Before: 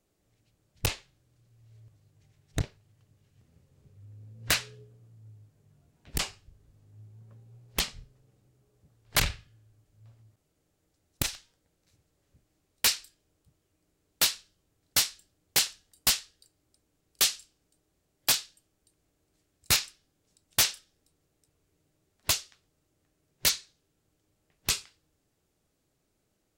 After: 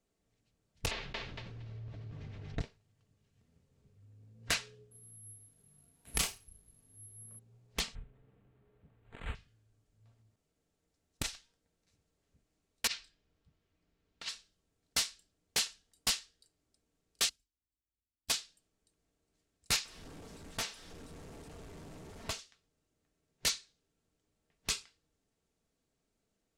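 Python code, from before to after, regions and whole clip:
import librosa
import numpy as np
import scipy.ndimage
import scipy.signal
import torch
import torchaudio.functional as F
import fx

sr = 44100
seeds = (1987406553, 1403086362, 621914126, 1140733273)

y = fx.chain(x, sr, fx.air_absorb(metres=240.0),
    fx.echo_feedback(ms=231, feedback_pct=16, wet_db=-3),
    fx.env_flatten(amount_pct=70), at=(0.91, 2.59))
y = fx.chain(y, sr, fx.doubler(ms=35.0, db=-3.0),
    fx.resample_bad(factor=4, down='none', up='zero_stuff'), at=(4.91, 7.39))
y = fx.chain(y, sr, fx.over_compress(threshold_db=-32.0, ratio=-0.5),
    fx.resample_linear(factor=8), at=(7.95, 9.35))
y = fx.chain(y, sr, fx.lowpass(hz=4000.0, slope=12),
    fx.peak_eq(hz=470.0, db=-4.5, octaves=2.3),
    fx.over_compress(threshold_db=-33.0, ratio=-0.5), at=(12.87, 14.29))
y = fx.chain(y, sr, fx.lower_of_two(delay_ms=3.1),
    fx.highpass(hz=52.0, slope=12),
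    fx.tone_stack(knobs='10-0-1'), at=(17.29, 18.3))
y = fx.chain(y, sr, fx.zero_step(step_db=-35.5),
    fx.high_shelf(hz=2100.0, db=-10.5), at=(19.85, 22.39))
y = scipy.signal.sosfilt(scipy.signal.butter(2, 9900.0, 'lowpass', fs=sr, output='sos'), y)
y = y + 0.34 * np.pad(y, (int(4.4 * sr / 1000.0), 0))[:len(y)]
y = y * librosa.db_to_amplitude(-6.5)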